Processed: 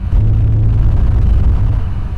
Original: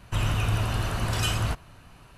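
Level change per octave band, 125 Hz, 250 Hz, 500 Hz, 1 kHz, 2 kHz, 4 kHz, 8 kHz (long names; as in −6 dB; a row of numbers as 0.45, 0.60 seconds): +15.0 dB, +12.0 dB, +5.0 dB, −1.0 dB, −5.5 dB, below −10 dB, below −15 dB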